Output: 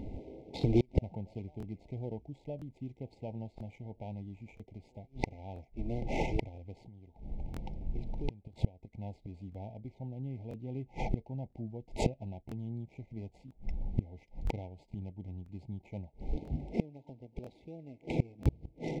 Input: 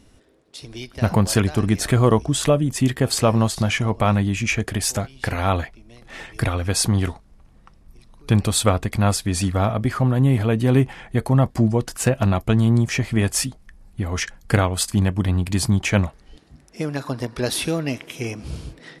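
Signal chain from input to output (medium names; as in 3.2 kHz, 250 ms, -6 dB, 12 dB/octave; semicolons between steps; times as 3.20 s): median filter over 15 samples; 6.87–8.95 s: compression 8:1, threshold -27 dBFS, peak gain reduction 15 dB; inverted gate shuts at -25 dBFS, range -35 dB; brick-wall FIR band-stop 930–2000 Hz; tape spacing loss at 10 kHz 23 dB; crackling interface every 0.99 s, samples 1024, repeat, from 0.59 s; trim +12 dB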